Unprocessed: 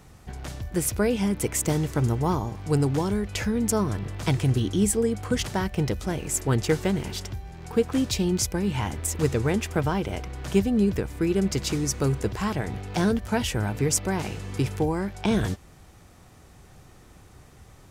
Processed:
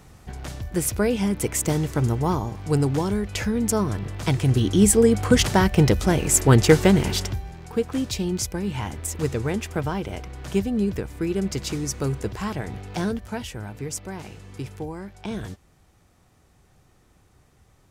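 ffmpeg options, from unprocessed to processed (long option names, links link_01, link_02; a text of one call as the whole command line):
ffmpeg -i in.wav -af "volume=8.5dB,afade=type=in:start_time=4.4:duration=0.76:silence=0.446684,afade=type=out:start_time=7.14:duration=0.52:silence=0.316228,afade=type=out:start_time=12.87:duration=0.64:silence=0.473151" out.wav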